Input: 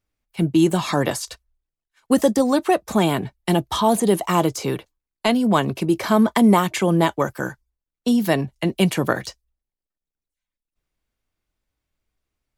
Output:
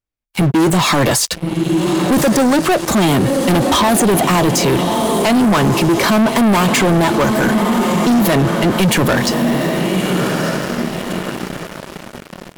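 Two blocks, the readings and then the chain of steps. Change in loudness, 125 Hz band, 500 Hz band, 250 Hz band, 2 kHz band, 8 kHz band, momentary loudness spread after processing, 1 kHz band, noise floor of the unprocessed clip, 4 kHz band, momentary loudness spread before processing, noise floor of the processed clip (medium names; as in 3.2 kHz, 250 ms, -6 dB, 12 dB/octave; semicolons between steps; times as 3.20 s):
+6.0 dB, +8.5 dB, +6.5 dB, +6.5 dB, +10.0 dB, +12.0 dB, 10 LU, +7.0 dB, under -85 dBFS, +10.0 dB, 10 LU, -37 dBFS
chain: echo that smears into a reverb 1258 ms, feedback 41%, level -12 dB; waveshaping leveller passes 5; loudness maximiser +9.5 dB; trim -8.5 dB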